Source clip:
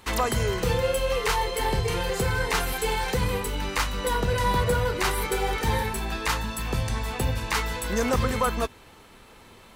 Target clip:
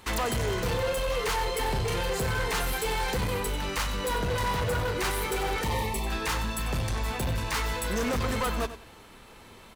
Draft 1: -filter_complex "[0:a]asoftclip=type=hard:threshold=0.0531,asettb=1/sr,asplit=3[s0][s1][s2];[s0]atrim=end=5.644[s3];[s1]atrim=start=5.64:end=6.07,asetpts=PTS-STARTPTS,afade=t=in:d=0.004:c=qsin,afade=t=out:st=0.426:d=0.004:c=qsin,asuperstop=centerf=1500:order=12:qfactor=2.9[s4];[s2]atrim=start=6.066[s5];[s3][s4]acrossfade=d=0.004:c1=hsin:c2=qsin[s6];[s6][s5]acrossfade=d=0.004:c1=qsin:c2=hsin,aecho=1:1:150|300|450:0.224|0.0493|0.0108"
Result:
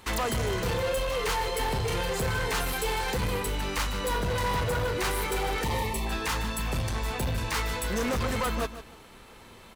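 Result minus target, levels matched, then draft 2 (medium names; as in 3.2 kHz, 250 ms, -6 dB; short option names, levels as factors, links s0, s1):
echo 56 ms late
-filter_complex "[0:a]asoftclip=type=hard:threshold=0.0531,asettb=1/sr,asplit=3[s0][s1][s2];[s0]atrim=end=5.644[s3];[s1]atrim=start=5.64:end=6.07,asetpts=PTS-STARTPTS,afade=t=in:d=0.004:c=qsin,afade=t=out:st=0.426:d=0.004:c=qsin,asuperstop=centerf=1500:order=12:qfactor=2.9[s4];[s2]atrim=start=6.066[s5];[s3][s4]acrossfade=d=0.004:c1=hsin:c2=qsin[s6];[s6][s5]acrossfade=d=0.004:c1=qsin:c2=hsin,aecho=1:1:94|188|282:0.224|0.0493|0.0108"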